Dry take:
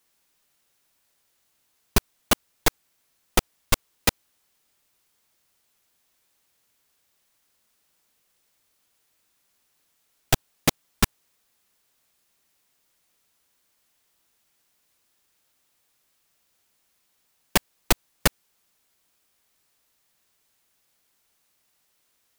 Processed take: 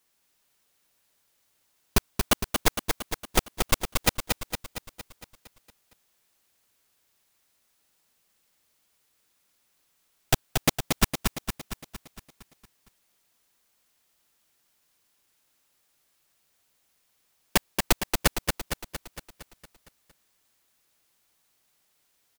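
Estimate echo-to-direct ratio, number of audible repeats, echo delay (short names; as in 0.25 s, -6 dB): -3.5 dB, 7, 0.23 s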